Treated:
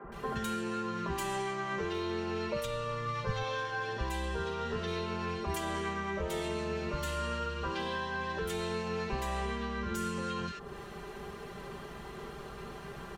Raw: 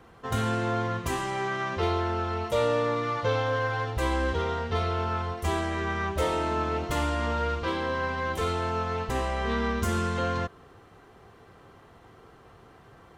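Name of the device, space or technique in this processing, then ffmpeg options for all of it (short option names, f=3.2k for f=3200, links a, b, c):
serial compression, leveller first: -filter_complex "[0:a]equalizer=f=750:w=1.4:g=-4.5,aecho=1:1:5:0.91,acompressor=threshold=-28dB:ratio=6,acompressor=threshold=-41dB:ratio=5,asplit=3[a][b][c];[a]afade=t=out:st=2.59:d=0.02[d];[b]asubboost=boost=9.5:cutoff=110,afade=t=in:st=2.59:d=0.02,afade=t=out:st=3.38:d=0.02[e];[c]afade=t=in:st=3.38:d=0.02[f];[d][e][f]amix=inputs=3:normalize=0,acrossover=split=250|1500[g][h][i];[g]adelay=40[j];[i]adelay=120[k];[j][h][k]amix=inputs=3:normalize=0,volume=9dB"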